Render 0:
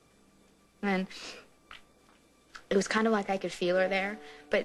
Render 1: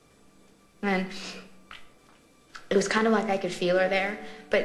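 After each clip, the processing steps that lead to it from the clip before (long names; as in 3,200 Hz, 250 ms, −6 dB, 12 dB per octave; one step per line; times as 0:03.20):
convolution reverb RT60 0.75 s, pre-delay 7 ms, DRR 9 dB
level +3.5 dB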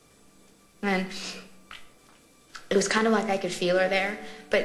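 high-shelf EQ 4,700 Hz +7 dB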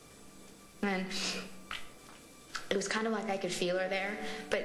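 downward compressor 8 to 1, threshold −33 dBFS, peak gain reduction 15.5 dB
level +3 dB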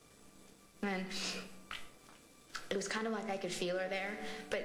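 leveller curve on the samples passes 1
level −8 dB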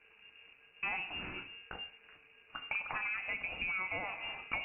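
voice inversion scrambler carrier 2,800 Hz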